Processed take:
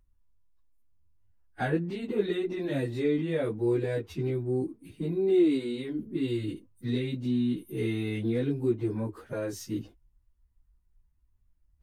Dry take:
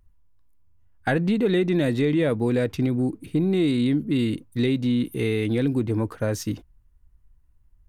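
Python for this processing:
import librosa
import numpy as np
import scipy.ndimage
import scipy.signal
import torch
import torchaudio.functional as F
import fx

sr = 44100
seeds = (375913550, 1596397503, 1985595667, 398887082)

y = fx.dynamic_eq(x, sr, hz=370.0, q=3.3, threshold_db=-38.0, ratio=4.0, max_db=8)
y = fx.stretch_vocoder_free(y, sr, factor=1.5)
y = y * 10.0 ** (-6.0 / 20.0)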